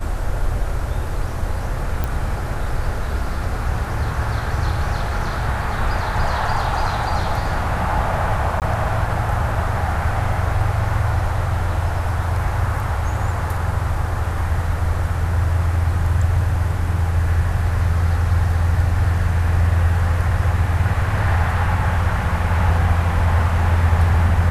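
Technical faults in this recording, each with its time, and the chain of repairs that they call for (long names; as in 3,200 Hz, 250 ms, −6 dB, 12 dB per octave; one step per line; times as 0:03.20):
0:02.04: click
0:08.60–0:08.62: drop-out 18 ms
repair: click removal
repair the gap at 0:08.60, 18 ms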